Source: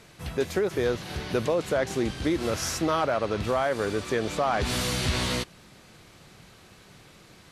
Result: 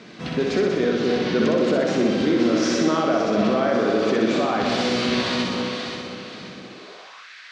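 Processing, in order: echo with dull and thin repeats by turns 0.265 s, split 840 Hz, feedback 60%, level -7 dB; limiter -23 dBFS, peak gain reduction 10.5 dB; LPF 5500 Hz 24 dB/oct; notch 870 Hz, Q 12; flutter echo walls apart 10.7 m, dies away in 1.1 s; high-pass sweep 220 Hz -> 1700 Hz, 6.72–7.31; gain +7 dB

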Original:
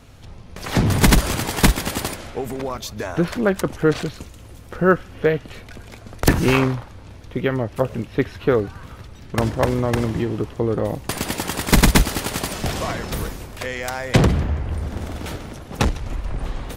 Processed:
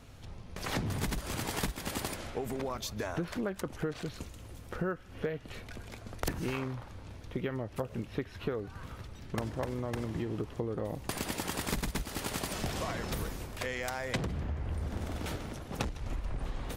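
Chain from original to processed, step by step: compressor 12:1, threshold -24 dBFS, peak gain reduction 16 dB; gain -6.5 dB

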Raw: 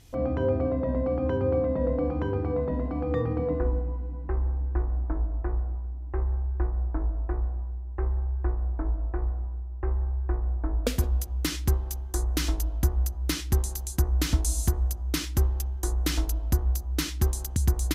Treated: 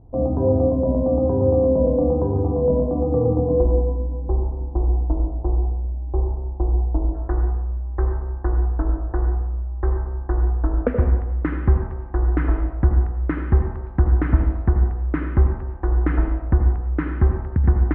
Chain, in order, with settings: steep low-pass 920 Hz 36 dB/oct, from 7.13 s 1800 Hz; reverb RT60 0.75 s, pre-delay 74 ms, DRR 4.5 dB; gain +7 dB

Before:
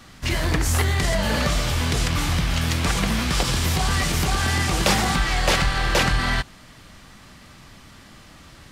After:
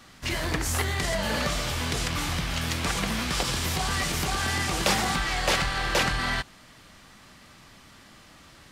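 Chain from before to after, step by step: low shelf 180 Hz -6.5 dB; gain -3.5 dB

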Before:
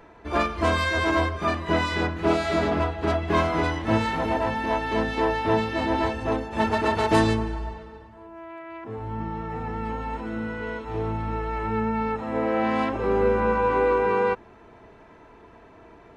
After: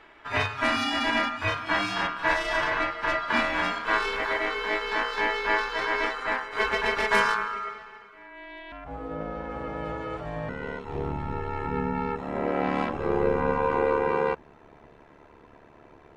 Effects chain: ring modulator 1300 Hz, from 8.72 s 380 Hz, from 10.49 s 36 Hz

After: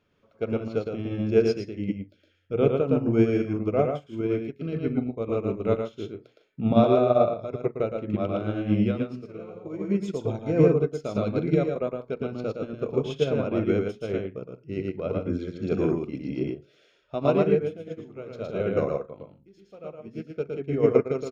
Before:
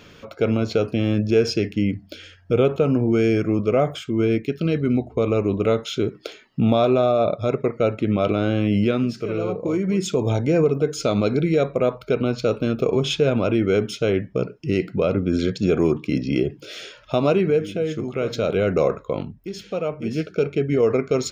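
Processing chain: high shelf 2700 Hz -10.5 dB; notches 60/120/180/240/300/360/420/480/540 Hz; on a send: loudspeakers at several distances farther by 39 m -2 dB, 53 m -10 dB; on the sum: upward expander 2.5:1, over -28 dBFS

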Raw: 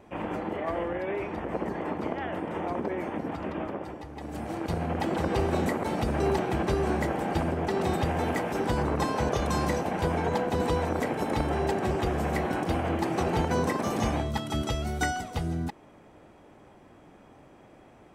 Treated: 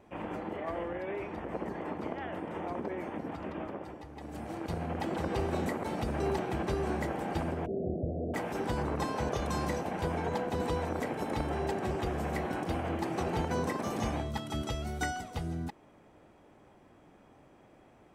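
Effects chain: 7.66–8.34 steep low-pass 680 Hz 96 dB/oct; gain -5.5 dB

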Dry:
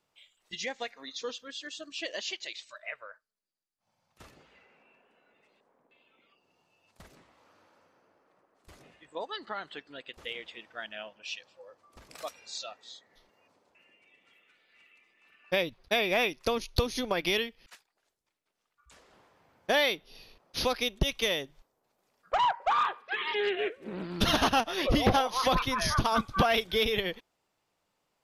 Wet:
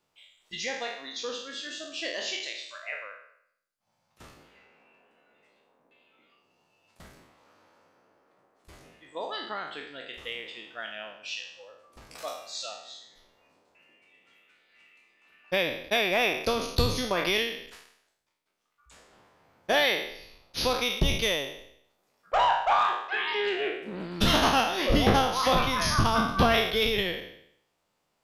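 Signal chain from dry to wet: spectral trails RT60 0.71 s

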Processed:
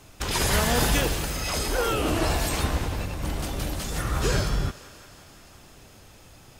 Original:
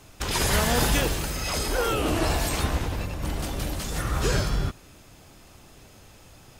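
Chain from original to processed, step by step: thinning echo 0.174 s, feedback 78%, high-pass 360 Hz, level -18 dB

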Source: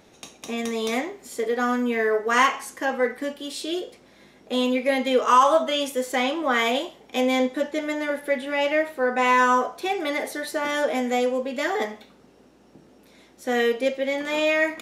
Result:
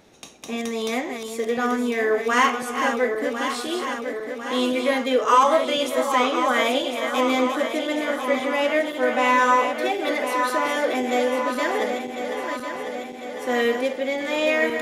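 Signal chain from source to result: regenerating reverse delay 0.525 s, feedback 76%, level -7 dB; ending taper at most 230 dB/s

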